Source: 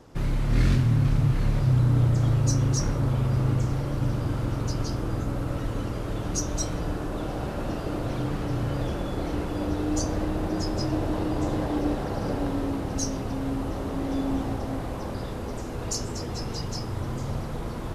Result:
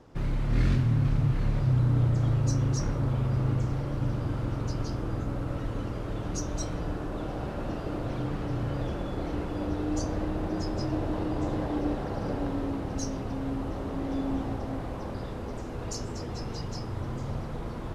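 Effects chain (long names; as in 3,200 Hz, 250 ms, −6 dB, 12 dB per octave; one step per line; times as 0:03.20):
low-pass filter 4,000 Hz 6 dB per octave
level −3 dB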